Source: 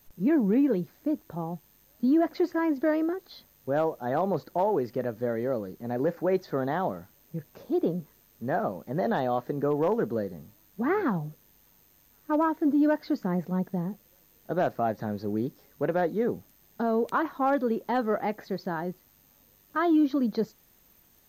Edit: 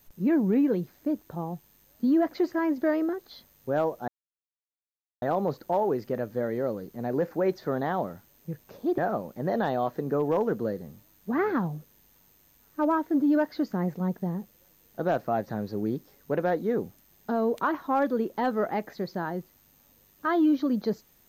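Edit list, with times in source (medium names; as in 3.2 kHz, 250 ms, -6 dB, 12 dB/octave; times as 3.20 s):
4.08 s: insert silence 1.14 s
7.84–8.49 s: delete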